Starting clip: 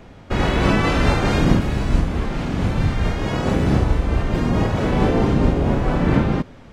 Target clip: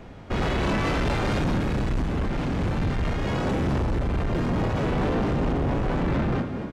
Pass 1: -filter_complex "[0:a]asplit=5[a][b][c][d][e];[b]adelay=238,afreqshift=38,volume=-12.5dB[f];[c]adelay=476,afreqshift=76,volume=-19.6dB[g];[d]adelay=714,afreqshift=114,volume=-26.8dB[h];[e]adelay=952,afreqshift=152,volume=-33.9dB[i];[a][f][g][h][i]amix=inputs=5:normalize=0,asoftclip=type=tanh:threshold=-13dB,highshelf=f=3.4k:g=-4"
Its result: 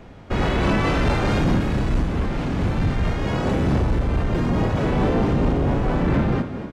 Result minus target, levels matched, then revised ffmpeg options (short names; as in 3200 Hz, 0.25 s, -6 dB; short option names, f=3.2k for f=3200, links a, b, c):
soft clip: distortion -7 dB
-filter_complex "[0:a]asplit=5[a][b][c][d][e];[b]adelay=238,afreqshift=38,volume=-12.5dB[f];[c]adelay=476,afreqshift=76,volume=-19.6dB[g];[d]adelay=714,afreqshift=114,volume=-26.8dB[h];[e]adelay=952,afreqshift=152,volume=-33.9dB[i];[a][f][g][h][i]amix=inputs=5:normalize=0,asoftclip=type=tanh:threshold=-21dB,highshelf=f=3.4k:g=-4"